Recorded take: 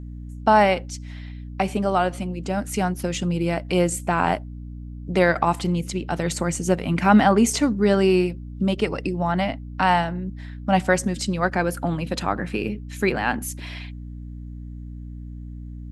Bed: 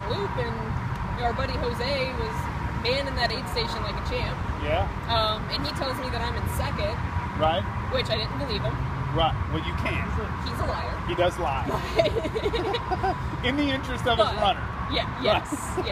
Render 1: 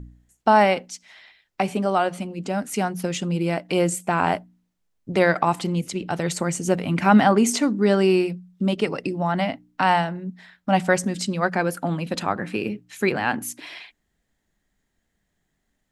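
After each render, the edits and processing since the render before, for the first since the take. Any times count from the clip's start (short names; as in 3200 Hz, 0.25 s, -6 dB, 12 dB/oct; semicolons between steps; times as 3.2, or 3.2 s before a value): de-hum 60 Hz, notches 5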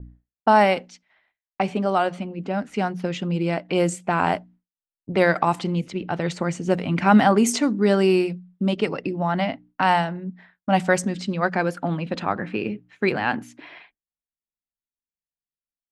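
low-pass opened by the level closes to 1500 Hz, open at -14 dBFS; expander -44 dBFS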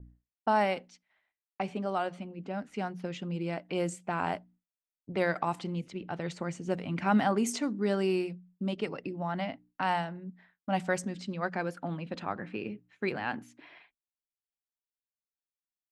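gain -10.5 dB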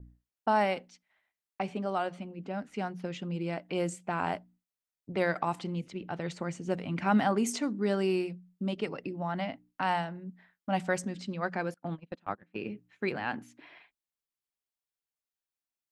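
11.74–12.56 gate -36 dBFS, range -26 dB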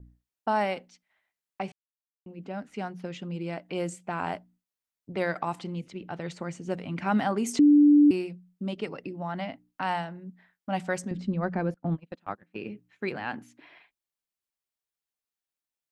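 1.72–2.26 mute; 7.59–8.11 bleep 293 Hz -13.5 dBFS; 11.11–11.97 tilt -3.5 dB/oct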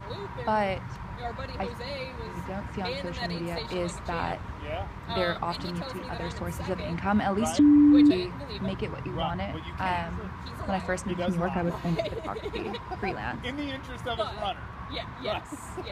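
add bed -9 dB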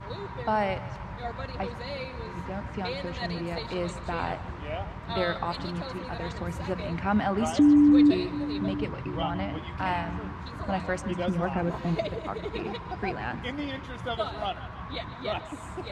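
air absorption 53 m; split-band echo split 360 Hz, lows 0.736 s, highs 0.15 s, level -15.5 dB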